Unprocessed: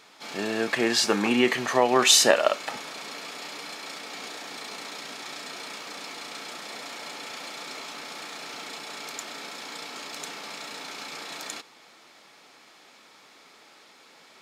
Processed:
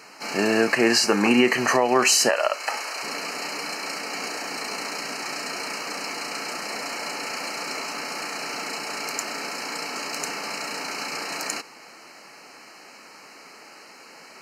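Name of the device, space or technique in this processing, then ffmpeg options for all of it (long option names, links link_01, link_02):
PA system with an anti-feedback notch: -filter_complex "[0:a]asettb=1/sr,asplit=3[link_01][link_02][link_03];[link_01]atrim=end=2.294[link_04];[link_02]atrim=start=2.29:end=3.03,asetpts=PTS-STARTPTS,afade=type=in:duration=0.004:curve=qsin,afade=type=out:start_time=0.736:duration=0.004:curve=qsin,highpass=550[link_05];[link_03]atrim=start=3.026[link_06];[link_04][link_05]acrossfade=duration=0.004:curve1=hsin:curve2=qsin[link_07];[link_07][link_06]acrossfade=duration=0.004:curve1=qsin:curve2=hsin,highpass=100,asuperstop=centerf=3500:order=8:qfactor=3.4,alimiter=limit=-16dB:level=0:latency=1:release=261,volume=8dB"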